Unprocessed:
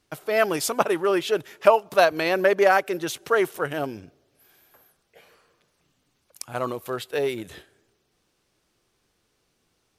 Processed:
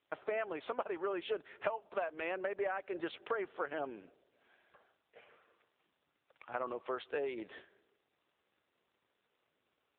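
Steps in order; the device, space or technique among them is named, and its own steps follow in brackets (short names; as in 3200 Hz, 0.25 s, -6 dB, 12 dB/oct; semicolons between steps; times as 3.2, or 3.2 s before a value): 3.54–3.95 de-esser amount 45%; voicemail (BPF 360–2900 Hz; compressor 12:1, threshold -29 dBFS, peak gain reduction 19 dB; gain -3.5 dB; AMR-NB 7.95 kbps 8000 Hz)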